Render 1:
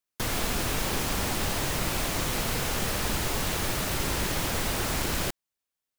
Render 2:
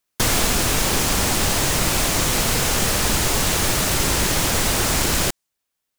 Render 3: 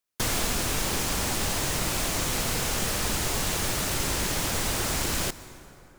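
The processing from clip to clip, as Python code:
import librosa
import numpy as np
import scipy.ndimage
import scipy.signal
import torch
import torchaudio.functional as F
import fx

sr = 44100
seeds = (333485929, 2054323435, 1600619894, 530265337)

y1 = fx.dynamic_eq(x, sr, hz=7400.0, q=0.8, threshold_db=-50.0, ratio=4.0, max_db=5)
y1 = fx.rider(y1, sr, range_db=10, speed_s=0.5)
y1 = y1 * librosa.db_to_amplitude(8.0)
y2 = fx.rev_plate(y1, sr, seeds[0], rt60_s=3.6, hf_ratio=0.5, predelay_ms=115, drr_db=15.5)
y2 = y2 * librosa.db_to_amplitude(-8.0)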